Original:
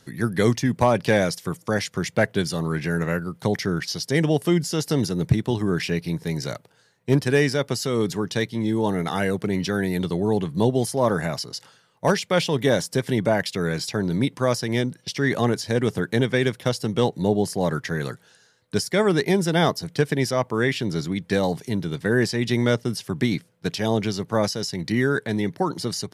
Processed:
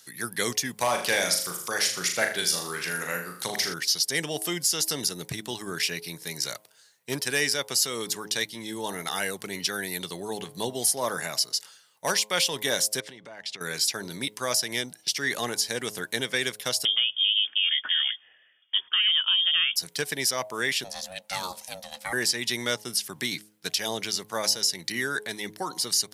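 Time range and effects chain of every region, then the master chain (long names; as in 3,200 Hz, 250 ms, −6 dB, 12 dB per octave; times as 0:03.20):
0:00.77–0:03.74: mains-hum notches 50/100/150/200/250/300/350 Hz + flutter between parallel walls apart 6.8 metres, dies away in 0.46 s + one half of a high-frequency compander encoder only
0:13.00–0:13.61: high-frequency loss of the air 110 metres + downward compressor, threshold −32 dBFS
0:16.85–0:19.76: downward compressor 5 to 1, threshold −21 dBFS + voice inversion scrambler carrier 3,400 Hz
0:20.84–0:22.13: high-pass filter 280 Hz 6 dB per octave + ring modulation 370 Hz
whole clip: spectral tilt +4.5 dB per octave; hum removal 105.9 Hz, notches 10; level −5 dB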